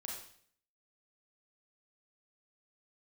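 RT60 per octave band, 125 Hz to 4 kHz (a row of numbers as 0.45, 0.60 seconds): 0.65, 0.65, 0.60, 0.55, 0.55, 0.55 seconds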